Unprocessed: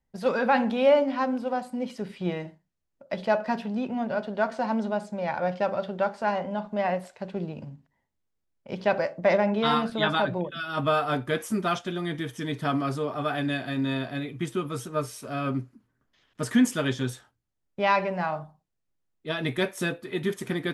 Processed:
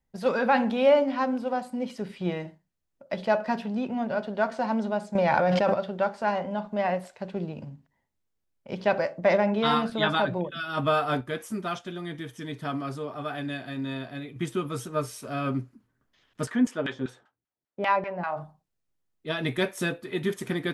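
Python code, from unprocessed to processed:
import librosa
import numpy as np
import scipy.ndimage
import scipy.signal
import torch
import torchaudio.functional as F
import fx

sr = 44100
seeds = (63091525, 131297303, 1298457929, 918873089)

y = fx.env_flatten(x, sr, amount_pct=100, at=(5.15, 5.74))
y = fx.filter_lfo_bandpass(y, sr, shape='saw_down', hz=5.1, low_hz=240.0, high_hz=2200.0, q=0.74, at=(16.45, 18.36), fade=0.02)
y = fx.edit(y, sr, fx.clip_gain(start_s=11.21, length_s=3.15, db=-5.0), tone=tone)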